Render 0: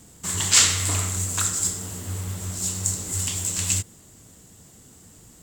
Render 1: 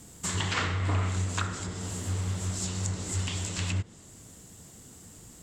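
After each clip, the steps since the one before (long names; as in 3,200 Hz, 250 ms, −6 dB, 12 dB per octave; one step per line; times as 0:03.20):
treble cut that deepens with the level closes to 1,500 Hz, closed at −18.5 dBFS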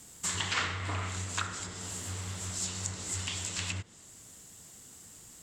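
tilt shelving filter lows −5 dB, about 690 Hz
level −4.5 dB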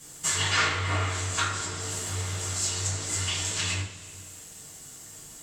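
coupled-rooms reverb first 0.39 s, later 2.4 s, from −20 dB, DRR −7.5 dB
level −1 dB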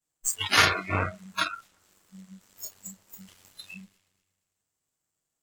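harmonic generator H 6 −22 dB, 7 −16 dB, 8 −18 dB, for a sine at −10.5 dBFS
delay that swaps between a low-pass and a high-pass 118 ms, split 2,000 Hz, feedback 57%, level −8 dB
noise reduction from a noise print of the clip's start 26 dB
level +6 dB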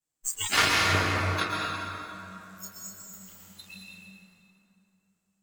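dense smooth reverb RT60 3.1 s, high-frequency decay 0.6×, pre-delay 105 ms, DRR −2.5 dB
level −3.5 dB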